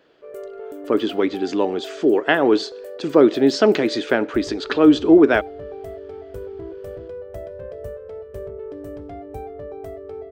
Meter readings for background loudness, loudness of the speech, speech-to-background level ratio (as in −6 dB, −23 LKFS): −35.5 LKFS, −18.0 LKFS, 17.5 dB